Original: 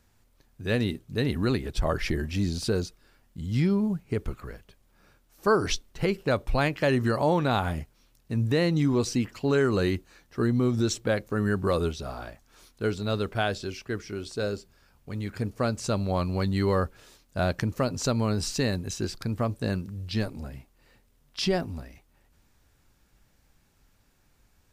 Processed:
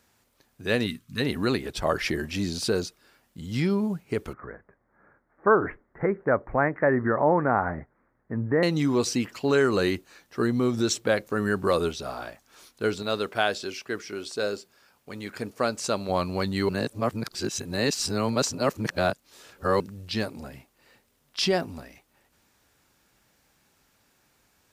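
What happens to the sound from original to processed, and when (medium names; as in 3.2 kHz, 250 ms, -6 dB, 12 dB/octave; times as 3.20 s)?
0.87–1.20 s: time-frequency box 300–990 Hz -15 dB
4.33–8.63 s: steep low-pass 2 kHz 72 dB/octave
13.02–16.09 s: bass shelf 130 Hz -11 dB
16.69–19.80 s: reverse
whole clip: high-pass 300 Hz 6 dB/octave; trim +4 dB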